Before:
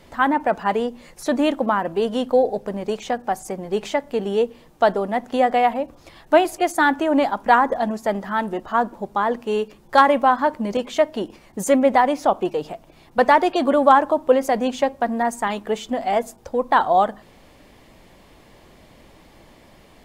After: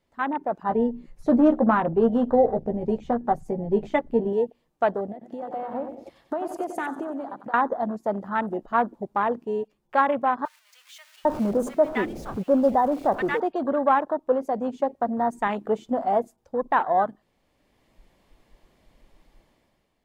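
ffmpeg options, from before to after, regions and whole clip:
-filter_complex "[0:a]asettb=1/sr,asplit=3[s0][s1][s2];[s0]atrim=end=0.694[s3];[s1]atrim=start=0.69:end=4.33,asetpts=PTS-STARTPTS,afade=t=in:d=0.004:c=qsin,afade=t=out:st=3.636:d=0.004:c=qsin,bass=f=250:g=8,treble=f=4000:g=-7,asplit=2[s4][s5];[s5]adelay=13,volume=0.501[s6];[s4][s6]amix=inputs=2:normalize=0,atrim=end_sample=160524,asoftclip=type=hard:threshold=0.398[s7];[s2]atrim=start=4.326[s8];[s3][s7]acrossfade=d=0.004:c1=hsin:c2=qsin[s9];[s9][s8]acrossfade=d=0.004:c1=qsin:c2=hsin,asettb=1/sr,asplit=3[s10][s11][s12];[s10]atrim=end=5.124[s13];[s11]atrim=start=5.12:end=7.54,asetpts=PTS-STARTPTS,afade=t=in:d=0.004:c=qsin,afade=t=out:st=2.416:d=0.004:c=qsin,highpass=47,acompressor=threshold=0.0447:ratio=16:attack=3.2:release=140:knee=1:detection=peak,aecho=1:1:92|184|276|368|460|552|644:0.355|0.206|0.119|0.0692|0.0402|0.0233|0.0135,atrim=end_sample=106722[s14];[s12]atrim=start=7.536[s15];[s13][s14]acrossfade=d=0.004:c1=hsin:c2=qsin[s16];[s16][s15]acrossfade=d=0.004:c1=qsin:c2=hsin,asettb=1/sr,asplit=3[s17][s18][s19];[s17]atrim=end=10.454[s20];[s18]atrim=start=10.45:end=13.4,asetpts=PTS-STARTPTS,afade=t=in:d=0.004:c=qsin,afade=t=out:st=2.946:d=0.004:c=qsin,aeval=exprs='val(0)+0.5*0.0631*sgn(val(0))':c=same,acrossover=split=1300[s21][s22];[s21]adelay=800[s23];[s23][s22]amix=inputs=2:normalize=0,atrim=end_sample=130095[s24];[s19]atrim=start=13.396[s25];[s20][s24]acrossfade=d=0.004:c1=hsin:c2=qsin[s26];[s26][s25]acrossfade=d=0.004:c1=qsin:c2=hsin,dynaudnorm=f=170:g=7:m=3.76,afwtdn=0.0891,volume=0.376"

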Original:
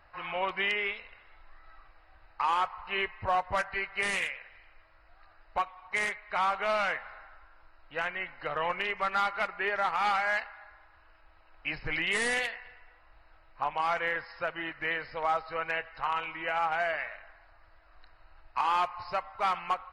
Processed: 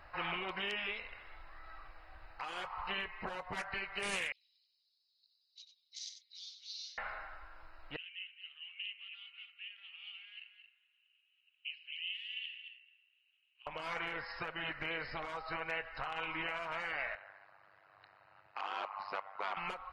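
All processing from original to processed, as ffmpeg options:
-filter_complex "[0:a]asettb=1/sr,asplit=3[s0][s1][s2];[s0]atrim=end=4.324[s3];[s1]atrim=start=4.32:end=6.98,asetpts=PTS-STARTPTS,afade=t=in:d=0.004:c=qsin,afade=t=out:st=2.656:d=0.004:c=qsin,asuperpass=centerf=4900:order=8:qfactor=1.9,aecho=1:1:93:0.335,atrim=end_sample=117306[s4];[s2]atrim=start=6.976[s5];[s3][s4]acrossfade=d=0.004:c1=hsin:c2=qsin[s6];[s6][s5]acrossfade=d=0.004:c1=qsin:c2=hsin,asettb=1/sr,asplit=3[s7][s8][s9];[s7]atrim=end=7.964[s10];[s8]atrim=start=7.96:end=13.67,asetpts=PTS-STARTPTS,afade=t=in:d=0.004:c=qsin,afade=t=out:st=5.706:d=0.004:c=qsin,acompressor=threshold=0.0251:ratio=5:attack=3.2:release=140:knee=1:detection=peak,asuperpass=centerf=2900:order=4:qfactor=5.6,aecho=1:1:223:0.335,atrim=end_sample=251811[s11];[s9]atrim=start=13.666[s12];[s10][s11]acrossfade=d=0.004:c1=hsin:c2=qsin[s13];[s13][s12]acrossfade=d=0.004:c1=qsin:c2=hsin,asettb=1/sr,asplit=3[s14][s15][s16];[s14]atrim=end=17.154[s17];[s15]atrim=start=17.15:end=19.57,asetpts=PTS-STARTPTS,afade=t=in:d=0.004:c=qsin,afade=t=out:st=2.416:d=0.004:c=qsin,asoftclip=type=hard:threshold=0.0708,tremolo=f=99:d=0.947,highpass=340,lowpass=3500[s18];[s16]atrim=start=19.566[s19];[s17][s18]acrossfade=d=0.004:c1=hsin:c2=qsin[s20];[s20][s19]acrossfade=d=0.004:c1=qsin:c2=hsin,acompressor=threshold=0.0282:ratio=4,alimiter=level_in=1.41:limit=0.0631:level=0:latency=1:release=392,volume=0.708,afftfilt=real='re*lt(hypot(re,im),0.0562)':imag='im*lt(hypot(re,im),0.0562)':win_size=1024:overlap=0.75,volume=1.5"

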